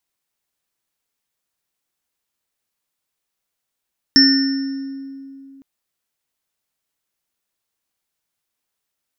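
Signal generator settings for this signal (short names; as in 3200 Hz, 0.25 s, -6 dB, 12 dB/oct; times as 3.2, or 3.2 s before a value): sine partials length 1.46 s, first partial 272 Hz, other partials 1470/1810/5380 Hz, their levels -20/-6.5/4 dB, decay 2.89 s, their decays 1.53/1.18/1.02 s, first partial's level -11 dB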